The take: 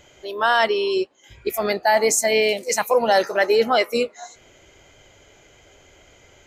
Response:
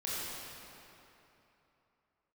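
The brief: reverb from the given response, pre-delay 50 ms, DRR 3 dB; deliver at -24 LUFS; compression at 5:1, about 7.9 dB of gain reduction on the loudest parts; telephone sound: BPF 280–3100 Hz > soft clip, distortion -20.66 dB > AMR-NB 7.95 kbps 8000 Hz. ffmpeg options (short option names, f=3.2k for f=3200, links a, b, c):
-filter_complex "[0:a]acompressor=threshold=-22dB:ratio=5,asplit=2[a][b];[1:a]atrim=start_sample=2205,adelay=50[c];[b][c]afir=irnorm=-1:irlink=0,volume=-7.5dB[d];[a][d]amix=inputs=2:normalize=0,highpass=280,lowpass=3.1k,asoftclip=threshold=-16dB,volume=3.5dB" -ar 8000 -c:a libopencore_amrnb -b:a 7950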